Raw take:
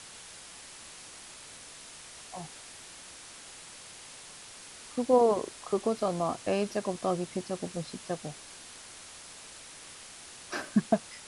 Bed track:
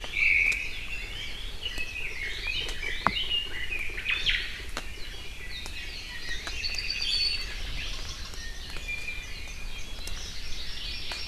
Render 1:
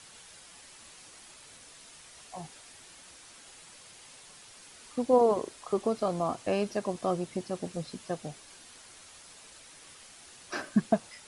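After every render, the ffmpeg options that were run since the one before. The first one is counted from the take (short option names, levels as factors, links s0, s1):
-af "afftdn=nr=6:nf=-49"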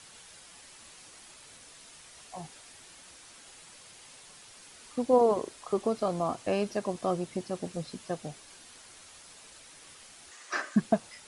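-filter_complex "[0:a]asettb=1/sr,asplit=3[s0][s1][s2];[s0]atrim=end=10.314[s3];[s1]atrim=start=10.31:end=10.76,asetpts=PTS-STARTPTS,afade=t=in:d=0.004:c=qsin,afade=t=out:st=0.446:d=0.004:c=qsin,highpass=370,equalizer=f=1200:t=q:w=4:g=7,equalizer=f=1900:t=q:w=4:g=9,equalizer=f=6700:t=q:w=4:g=4,lowpass=f=9800:w=0.5412,lowpass=f=9800:w=1.3066[s4];[s2]atrim=start=10.756[s5];[s3][s4]acrossfade=d=0.004:c1=hsin:c2=qsin[s6];[s6][s5]acrossfade=d=0.004:c1=qsin:c2=hsin"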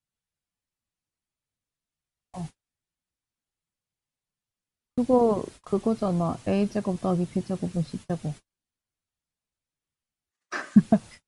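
-af "agate=range=0.00891:threshold=0.00562:ratio=16:detection=peak,bass=f=250:g=14,treble=f=4000:g=-2"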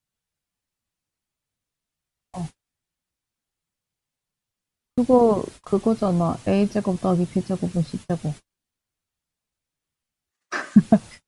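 -af "volume=1.68,alimiter=limit=0.708:level=0:latency=1"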